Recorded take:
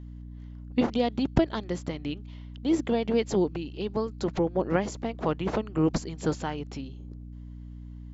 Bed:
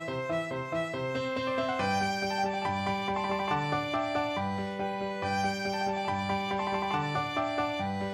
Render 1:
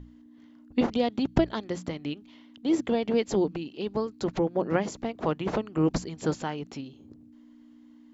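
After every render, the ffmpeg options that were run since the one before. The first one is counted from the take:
-af "bandreject=f=60:t=h:w=6,bandreject=f=120:t=h:w=6,bandreject=f=180:t=h:w=6"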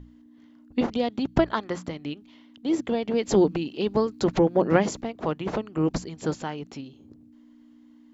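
-filter_complex "[0:a]asettb=1/sr,asplit=3[a][b][c];[a]atrim=end=1.384[d];[b]atrim=start=1.38:end=1.86,asetpts=PTS-STARTPTS,afade=t=in:d=0.004:c=qsin,afade=t=out:st=0.476:d=0.004:c=qsin,equalizer=f=1.2k:w=0.94:g=10.5[e];[c]atrim=start=1.856[f];[d][e]acrossfade=d=0.004:c1=hsin:c2=qsin[g];[g][f]acrossfade=d=0.004:c1=qsin:c2=hsin,asettb=1/sr,asplit=3[h][i][j];[h]atrim=end=3.234[k];[i]atrim=start=3.23:end=5.01,asetpts=PTS-STARTPTS,afade=t=in:d=0.004:c=qsin,afade=t=out:st=1.776:d=0.004:c=qsin,acontrast=55[l];[j]atrim=start=5.006[m];[k][l]acrossfade=d=0.004:c1=hsin:c2=qsin[n];[n][m]acrossfade=d=0.004:c1=qsin:c2=hsin"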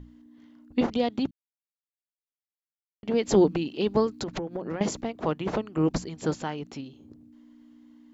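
-filter_complex "[0:a]asettb=1/sr,asplit=3[a][b][c];[a]atrim=end=4.174[d];[b]atrim=start=4.17:end=4.81,asetpts=PTS-STARTPTS,afade=t=in:d=0.004:c=qsin,afade=t=out:st=0.636:d=0.004:c=qsin,acompressor=threshold=-28dB:ratio=16:attack=3.2:release=140:knee=1:detection=peak[e];[c]atrim=start=4.806[f];[d][e]acrossfade=d=0.004:c1=hsin:c2=qsin[g];[g][f]acrossfade=d=0.004:c1=qsin:c2=hsin,asplit=3[h][i][j];[h]atrim=end=1.31,asetpts=PTS-STARTPTS,afade=t=out:st=1.306:d=0.004:c=hsin[k];[i]atrim=start=1.31:end=3.03,asetpts=PTS-STARTPTS,volume=0[l];[j]atrim=start=3.03,asetpts=PTS-STARTPTS,afade=t=in:d=0.004:c=hsin[m];[k][l][m]concat=n=3:v=0:a=1"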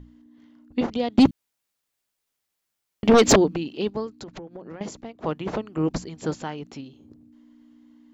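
-filter_complex "[0:a]asettb=1/sr,asplit=3[a][b][c];[a]atrim=end=1.184[d];[b]atrim=start=1.18:end=3.36,asetpts=PTS-STARTPTS,afade=t=in:d=0.004:c=qsin,afade=t=out:st=2.176:d=0.004:c=qsin,aeval=exprs='0.335*sin(PI/2*3.98*val(0)/0.335)':c=same[e];[c]atrim=start=3.356[f];[d][e]acrossfade=d=0.004:c1=hsin:c2=qsin[g];[g][f]acrossfade=d=0.004:c1=qsin:c2=hsin,asplit=3[h][i][j];[h]atrim=end=3.902[k];[i]atrim=start=3.898:end=5.242,asetpts=PTS-STARTPTS,volume=-6.5dB[l];[j]atrim=start=5.238[m];[k][l]acrossfade=d=0.004:c1=hsin:c2=hsin[n];[n][m]acrossfade=d=0.004:c1=hsin:c2=hsin"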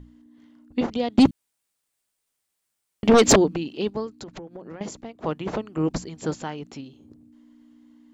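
-af "equalizer=f=8.8k:w=2.6:g=7"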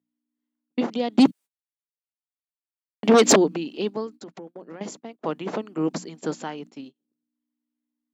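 -af "agate=range=-31dB:threshold=-40dB:ratio=16:detection=peak,highpass=f=180:w=0.5412,highpass=f=180:w=1.3066"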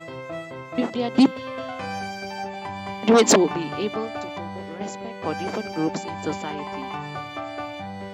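-filter_complex "[1:a]volume=-2dB[a];[0:a][a]amix=inputs=2:normalize=0"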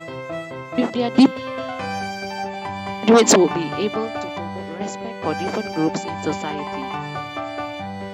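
-af "volume=4dB,alimiter=limit=-3dB:level=0:latency=1"

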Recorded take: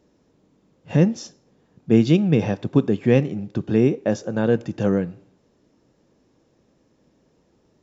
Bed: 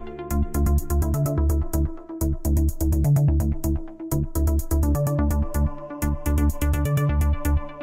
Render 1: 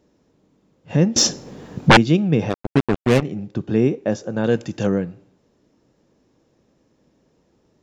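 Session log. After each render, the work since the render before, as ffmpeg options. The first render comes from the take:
-filter_complex "[0:a]asettb=1/sr,asplit=3[a][b][c];[a]atrim=end=1.164[d];[b]atrim=start=1.16:end=1.97,asetpts=PTS-STARTPTS,afade=t=in:d=0.004:c=qsin,afade=t=out:st=0.806:d=0.004:c=qsin,aeval=exprs='0.596*sin(PI/2*7.94*val(0)/0.596)':c=same[e];[c]atrim=start=1.966[f];[d][e]acrossfade=d=0.004:c1=hsin:c2=qsin[g];[g][f]acrossfade=d=0.004:c1=qsin:c2=hsin,asplit=3[h][i][j];[h]afade=t=out:st=2.49:d=0.02[k];[i]acrusher=bits=2:mix=0:aa=0.5,afade=t=in:st=2.49:d=0.02,afade=t=out:st=3.21:d=0.02[l];[j]afade=t=in:st=3.21:d=0.02[m];[k][l][m]amix=inputs=3:normalize=0,asettb=1/sr,asplit=3[n][o][p];[n]atrim=end=4.444[q];[o]atrim=start=4.44:end=4.87,asetpts=PTS-STARTPTS,afade=t=in:d=0.004:c=qsin,afade=t=out:st=0.426:d=0.004:c=qsin,highshelf=f=2.8k:g=11[r];[p]atrim=start=4.866[s];[q][r]acrossfade=d=0.004:c1=hsin:c2=qsin[t];[t][s]acrossfade=d=0.004:c1=qsin:c2=hsin"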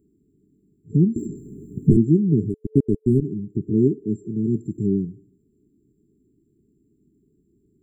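-filter_complex "[0:a]afftfilt=real='re*(1-between(b*sr/4096,440,7200))':imag='im*(1-between(b*sr/4096,440,7200))':win_size=4096:overlap=0.75,acrossover=split=2700[a][b];[b]acompressor=threshold=-54dB:ratio=4:attack=1:release=60[c];[a][c]amix=inputs=2:normalize=0"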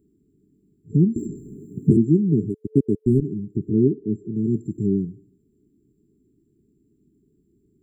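-filter_complex "[0:a]asettb=1/sr,asplit=3[a][b][c];[a]atrim=end=1.564[d];[b]atrim=start=1.56:end=2.99,asetpts=PTS-STARTPTS,afade=t=in:d=0.004:c=qsin,afade=t=out:st=1.426:d=0.004:c=qsin,highpass=110[e];[c]atrim=start=2.986[f];[d][e]acrossfade=d=0.004:c1=hsin:c2=qsin[g];[g][f]acrossfade=d=0.004:c1=qsin:c2=hsin,asplit=3[h][i][j];[h]afade=t=out:st=3.74:d=0.02[k];[i]lowpass=4k,afade=t=in:st=3.74:d=0.02,afade=t=out:st=4.33:d=0.02[l];[j]afade=t=in:st=4.33:d=0.02[m];[k][l][m]amix=inputs=3:normalize=0"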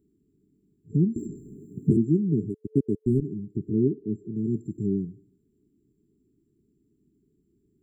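-af "volume=-5dB"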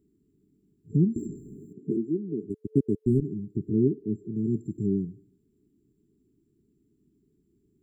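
-filter_complex "[0:a]asplit=3[a][b][c];[a]afade=t=out:st=1.72:d=0.02[d];[b]highpass=350,lowpass=3.6k,afade=t=in:st=1.72:d=0.02,afade=t=out:st=2.49:d=0.02[e];[c]afade=t=in:st=2.49:d=0.02[f];[d][e][f]amix=inputs=3:normalize=0"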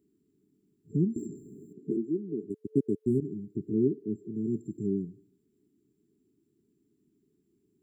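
-af "highpass=f=260:p=1"

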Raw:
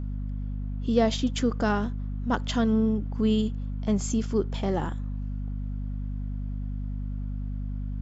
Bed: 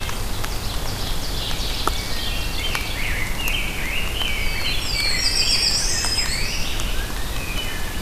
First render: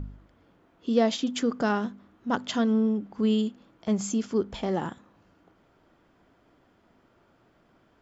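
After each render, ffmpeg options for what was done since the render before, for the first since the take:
-af "bandreject=f=50:t=h:w=4,bandreject=f=100:t=h:w=4,bandreject=f=150:t=h:w=4,bandreject=f=200:t=h:w=4,bandreject=f=250:t=h:w=4"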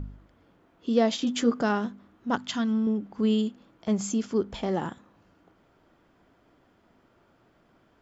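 -filter_complex "[0:a]asettb=1/sr,asplit=3[a][b][c];[a]atrim=end=1.204[d];[b]atrim=start=1.2:end=1.61,asetpts=PTS-STARTPTS,afade=t=in:d=0.004:c=qsin,afade=t=out:st=0.406:d=0.004:c=qsin,asplit=2[e][f];[f]adelay=13,volume=-3dB[g];[e][g]amix=inputs=2:normalize=0,atrim=end_sample=18081[h];[c]atrim=start=1.606[i];[d][h]acrossfade=d=0.004:c1=hsin:c2=qsin[j];[j][i]acrossfade=d=0.004:c1=qsin:c2=hsin,asettb=1/sr,asplit=3[k][l][m];[k]atrim=end=2.364[n];[l]atrim=start=2.36:end=2.87,asetpts=PTS-STARTPTS,afade=t=in:d=0.004:c=qsin,afade=t=out:st=0.506:d=0.004:c=qsin,equalizer=f=500:t=o:w=1:g=-12.5[o];[m]atrim=start=2.866[p];[n][o]acrossfade=d=0.004:c1=hsin:c2=qsin[q];[q][p]acrossfade=d=0.004:c1=qsin:c2=hsin"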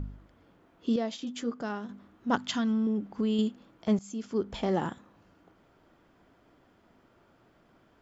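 -filter_complex "[0:a]asettb=1/sr,asplit=3[a][b][c];[a]atrim=end=2.504[d];[b]atrim=start=2.5:end=3.39,asetpts=PTS-STARTPTS,afade=t=in:d=0.004:c=qsin,afade=t=out:st=0.886:d=0.004:c=qsin,acompressor=threshold=-24dB:ratio=6:attack=3.2:release=140:knee=1:detection=peak[e];[c]atrim=start=3.386[f];[d][e]acrossfade=d=0.004:c1=hsin:c2=qsin[g];[g][f]acrossfade=d=0.004:c1=qsin:c2=hsin,asplit=4[h][i][j][k];[h]atrim=end=0.962[l];[i]atrim=start=0.958:end=1.892,asetpts=PTS-STARTPTS,volume=-9.5dB[m];[j]atrim=start=1.888:end=3.99,asetpts=PTS-STARTPTS,afade=t=out:st=2.098:d=0.004:c=hsin:silence=0.0944061[n];[k]atrim=start=3.99,asetpts=PTS-STARTPTS,afade=t=in:d=0.64:silence=0.0944061[o];[l][m]acrossfade=d=0.004:c1=hsin:c2=hsin[p];[n][o]concat=n=2:v=0:a=1[q];[p][q]acrossfade=d=0.004:c1=hsin:c2=hsin"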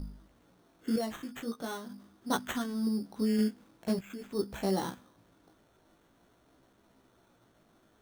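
-af "flanger=delay=15:depth=4:speed=0.44,acrusher=samples=9:mix=1:aa=0.000001"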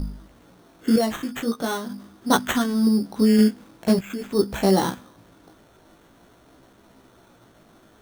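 -af "volume=12dB"

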